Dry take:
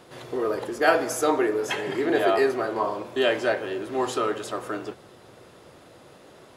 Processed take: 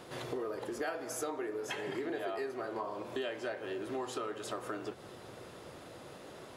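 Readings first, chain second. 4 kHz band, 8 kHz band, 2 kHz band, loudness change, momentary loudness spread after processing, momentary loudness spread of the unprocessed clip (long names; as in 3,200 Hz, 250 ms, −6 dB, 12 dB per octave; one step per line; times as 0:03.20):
−12.5 dB, −9.5 dB, −14.5 dB, −14.0 dB, 12 LU, 10 LU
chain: downward compressor 6 to 1, threshold −36 dBFS, peak gain reduction 20.5 dB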